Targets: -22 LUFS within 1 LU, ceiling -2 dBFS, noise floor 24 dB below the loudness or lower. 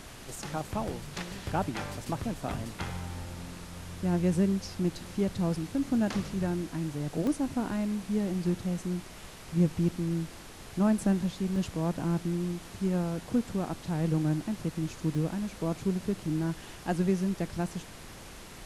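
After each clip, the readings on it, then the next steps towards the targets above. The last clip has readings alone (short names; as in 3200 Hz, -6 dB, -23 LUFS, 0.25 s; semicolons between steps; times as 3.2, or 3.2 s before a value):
dropouts 3; longest dropout 1.9 ms; noise floor -47 dBFS; noise floor target -56 dBFS; loudness -31.5 LUFS; peak -14.0 dBFS; loudness target -22.0 LUFS
-> interpolate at 7.27/11.56/15.15, 1.9 ms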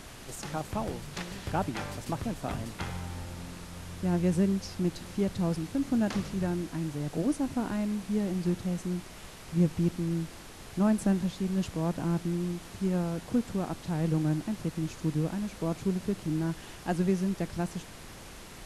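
dropouts 0; noise floor -47 dBFS; noise floor target -56 dBFS
-> noise print and reduce 9 dB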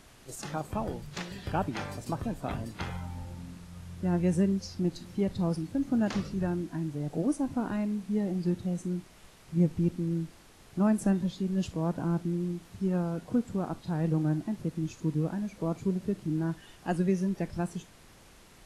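noise floor -55 dBFS; noise floor target -56 dBFS
-> noise print and reduce 6 dB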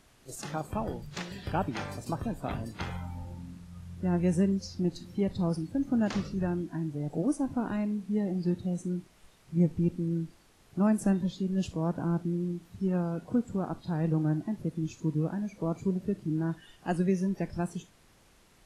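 noise floor -61 dBFS; loudness -31.5 LUFS; peak -14.5 dBFS; loudness target -22.0 LUFS
-> gain +9.5 dB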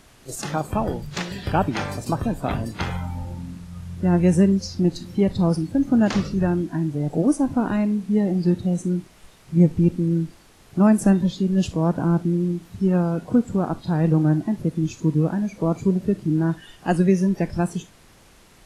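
loudness -22.0 LUFS; peak -5.0 dBFS; noise floor -52 dBFS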